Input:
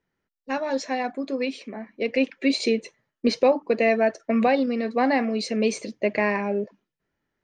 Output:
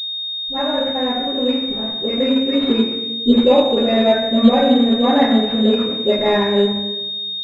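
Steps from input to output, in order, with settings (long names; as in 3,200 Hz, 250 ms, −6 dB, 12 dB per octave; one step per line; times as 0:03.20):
low-shelf EQ 100 Hz +10.5 dB
centre clipping without the shift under −35.5 dBFS
all-pass dispersion highs, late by 67 ms, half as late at 530 Hz
convolution reverb RT60 1.1 s, pre-delay 6 ms, DRR −5.5 dB
switching amplifier with a slow clock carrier 3,700 Hz
level −1.5 dB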